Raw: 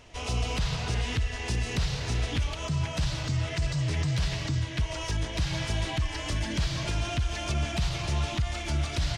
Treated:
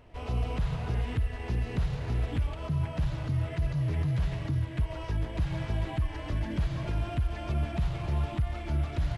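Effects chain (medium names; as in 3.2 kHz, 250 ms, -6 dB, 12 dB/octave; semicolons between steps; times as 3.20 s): careless resampling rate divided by 4×, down none, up zero stuff; tape spacing loss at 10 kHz 40 dB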